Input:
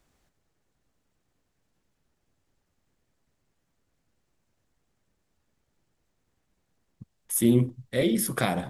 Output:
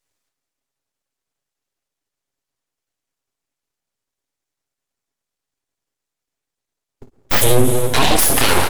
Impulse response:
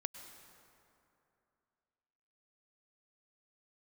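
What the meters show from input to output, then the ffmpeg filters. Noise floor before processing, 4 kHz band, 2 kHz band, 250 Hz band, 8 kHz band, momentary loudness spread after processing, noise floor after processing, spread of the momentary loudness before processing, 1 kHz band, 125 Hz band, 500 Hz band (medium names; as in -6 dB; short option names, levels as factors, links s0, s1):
-77 dBFS, +18.0 dB, +15.0 dB, +2.5 dB, +13.5 dB, 3 LU, -84 dBFS, 7 LU, no reading, +7.5 dB, +10.0 dB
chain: -filter_complex "[0:a]agate=range=0.0631:threshold=0.00891:ratio=16:detection=peak,highpass=f=120:w=0.5412,highpass=f=120:w=1.3066,aecho=1:1:7.3:0.8,aecho=1:1:24|53:0.316|0.282,asplit=2[s0][s1];[1:a]atrim=start_sample=2205[s2];[s1][s2]afir=irnorm=-1:irlink=0,volume=2.66[s3];[s0][s3]amix=inputs=2:normalize=0,aeval=exprs='abs(val(0))':c=same,equalizer=f=10000:t=o:w=3:g=7,alimiter=level_in=2.11:limit=0.891:release=50:level=0:latency=1,volume=0.891"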